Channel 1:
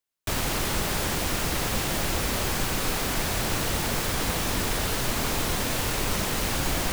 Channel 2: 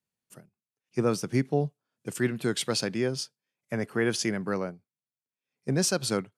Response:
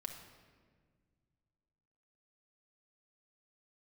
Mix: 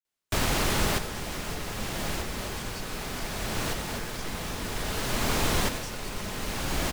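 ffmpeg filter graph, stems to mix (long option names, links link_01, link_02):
-filter_complex "[0:a]adelay=50,volume=0.5dB,asplit=2[link_01][link_02];[link_02]volume=-11.5dB[link_03];[1:a]highpass=frequency=770:poles=1,volume=-15.5dB,asplit=2[link_04][link_05];[link_05]apad=whole_len=307559[link_06];[link_01][link_06]sidechaincompress=threshold=-55dB:ratio=8:attack=11:release=922[link_07];[2:a]atrim=start_sample=2205[link_08];[link_03][link_08]afir=irnorm=-1:irlink=0[link_09];[link_07][link_04][link_09]amix=inputs=3:normalize=0,highshelf=frequency=10000:gain=-6.5"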